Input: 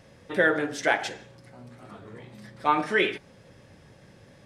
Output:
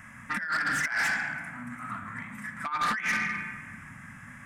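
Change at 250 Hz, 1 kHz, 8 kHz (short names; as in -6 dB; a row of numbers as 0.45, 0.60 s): -7.0, -3.0, +3.0 dB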